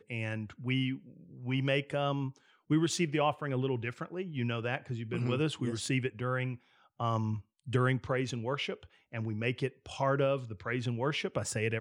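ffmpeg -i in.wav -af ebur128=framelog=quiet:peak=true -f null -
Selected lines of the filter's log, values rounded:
Integrated loudness:
  I:         -33.4 LUFS
  Threshold: -43.6 LUFS
Loudness range:
  LRA:         1.9 LU
  Threshold: -53.6 LUFS
  LRA low:   -34.5 LUFS
  LRA high:  -32.6 LUFS
True peak:
  Peak:      -15.5 dBFS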